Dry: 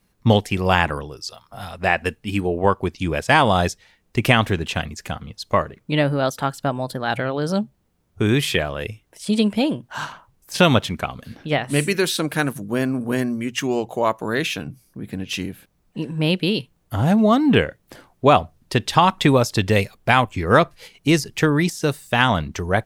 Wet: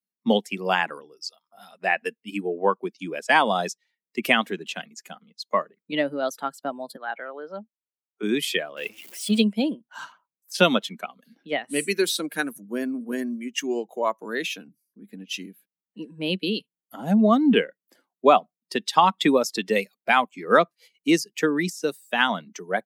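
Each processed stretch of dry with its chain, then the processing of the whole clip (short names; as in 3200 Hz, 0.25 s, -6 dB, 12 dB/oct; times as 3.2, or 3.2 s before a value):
6.96–8.23 treble ducked by the level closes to 2000 Hz, closed at -22 dBFS + weighting filter A
8.77–9.42 zero-crossing step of -28.5 dBFS + bell 2700 Hz +6 dB 0.75 oct
whole clip: per-bin expansion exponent 1.5; steep high-pass 190 Hz 48 dB/oct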